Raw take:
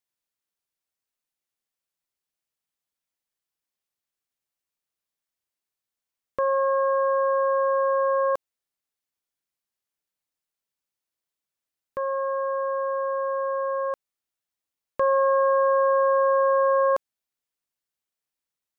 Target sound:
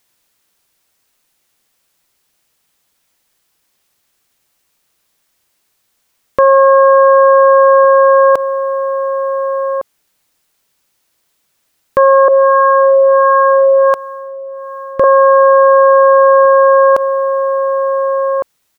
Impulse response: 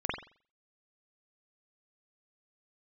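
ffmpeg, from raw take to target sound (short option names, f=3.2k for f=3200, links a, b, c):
-filter_complex "[0:a]asplit=2[a][b];[b]adelay=1458,volume=-17dB,highshelf=f=4k:g=-32.8[c];[a][c]amix=inputs=2:normalize=0,asettb=1/sr,asplit=3[d][e][f];[d]atrim=end=12.284[g];[e]atrim=start=12.28:end=15.04,asetpts=PTS-STARTPTS,afade=t=in:d=0.004:c=qsin,afade=t=out:st=2.756:d=0.004:c=qsin,acrossover=split=620[h][i];[h]aeval=exprs='val(0)*(1-1/2+1/2*cos(2*PI*1.4*n/s))':c=same[j];[i]aeval=exprs='val(0)*(1-1/2-1/2*cos(2*PI*1.4*n/s))':c=same[k];[j][k]amix=inputs=2:normalize=0[l];[f]atrim=start=15.036[m];[g][l]acrossfade=d=0.004:c1=hsin:c2=qsin[n];[n][m]acrossfade=d=0.004:c1=qsin:c2=hsin,alimiter=level_in=25.5dB:limit=-1dB:release=50:level=0:latency=1,volume=-1dB"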